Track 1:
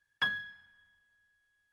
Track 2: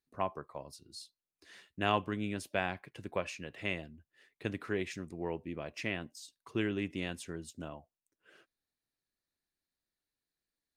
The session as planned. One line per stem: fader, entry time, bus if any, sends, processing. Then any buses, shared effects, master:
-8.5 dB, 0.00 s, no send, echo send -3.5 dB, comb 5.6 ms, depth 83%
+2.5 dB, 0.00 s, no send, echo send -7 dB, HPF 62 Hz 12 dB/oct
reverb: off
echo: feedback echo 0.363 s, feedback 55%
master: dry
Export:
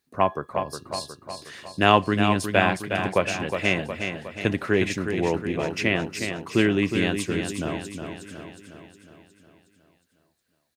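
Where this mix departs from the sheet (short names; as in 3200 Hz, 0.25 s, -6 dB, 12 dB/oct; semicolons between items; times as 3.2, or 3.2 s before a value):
stem 1 -8.5 dB -> -19.5 dB; stem 2 +2.5 dB -> +13.0 dB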